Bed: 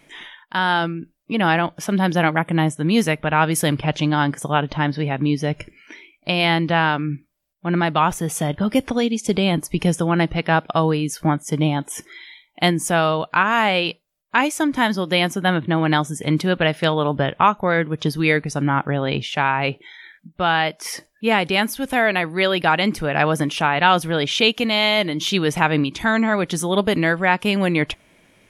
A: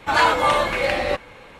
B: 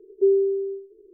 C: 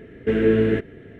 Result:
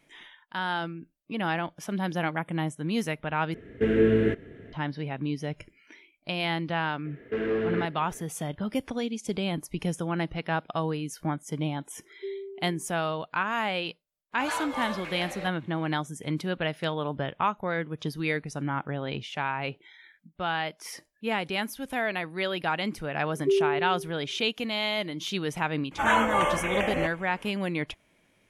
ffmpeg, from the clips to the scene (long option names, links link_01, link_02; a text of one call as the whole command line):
ffmpeg -i bed.wav -i cue0.wav -i cue1.wav -i cue2.wav -filter_complex "[3:a]asplit=2[link_01][link_02];[2:a]asplit=2[link_03][link_04];[1:a]asplit=2[link_05][link_06];[0:a]volume=-11dB[link_07];[link_02]asplit=2[link_08][link_09];[link_09]highpass=frequency=720:poles=1,volume=17dB,asoftclip=type=tanh:threshold=-7dB[link_10];[link_08][link_10]amix=inputs=2:normalize=0,lowpass=frequency=2000:poles=1,volume=-6dB[link_11];[link_05]equalizer=frequency=76:width=0.32:gain=-7.5[link_12];[link_04]aecho=1:1:1.9:0.65[link_13];[link_06]asuperstop=centerf=4400:order=12:qfactor=1.8[link_14];[link_07]asplit=2[link_15][link_16];[link_15]atrim=end=3.544[link_17];[link_01]atrim=end=1.19,asetpts=PTS-STARTPTS,volume=-3.5dB[link_18];[link_16]atrim=start=4.726[link_19];[link_11]atrim=end=1.19,asetpts=PTS-STARTPTS,volume=-12dB,afade=type=in:duration=0.004:curve=hsin,afade=type=out:start_time=1.186:duration=0.004:curve=hsin,adelay=7050[link_20];[link_03]atrim=end=1.13,asetpts=PTS-STARTPTS,volume=-18dB,afade=type=in:duration=0.004:curve=hsin,afade=type=out:start_time=1.126:duration=0.004:curve=hsin,adelay=12010[link_21];[link_12]atrim=end=1.59,asetpts=PTS-STARTPTS,volume=-15dB,afade=type=in:duration=0.004:curve=hsin,afade=type=out:start_time=1.586:duration=0.004:curve=hsin,adelay=14320[link_22];[link_13]atrim=end=1.13,asetpts=PTS-STARTPTS,volume=-6.5dB,afade=type=in:duration=0.004:curve=hsin,afade=type=out:start_time=1.126:duration=0.004:curve=hsin,adelay=23250[link_23];[link_14]atrim=end=1.59,asetpts=PTS-STARTPTS,volume=-6.5dB,afade=type=in:duration=0.004:curve=hsin,afade=type=out:start_time=1.586:duration=0.004:curve=hsin,adelay=25910[link_24];[link_17][link_18]acrossfade=duration=0.004:curve1=hsin:curve2=hsin[link_25];[link_25][link_19]acrossfade=duration=0.004:curve1=hsin:curve2=hsin[link_26];[link_26][link_20][link_21][link_22][link_23][link_24]amix=inputs=6:normalize=0" out.wav